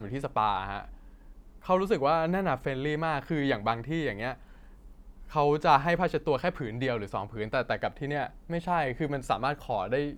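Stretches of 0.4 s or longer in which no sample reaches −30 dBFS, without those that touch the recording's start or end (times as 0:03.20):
0:00.80–0:01.69
0:04.32–0:05.35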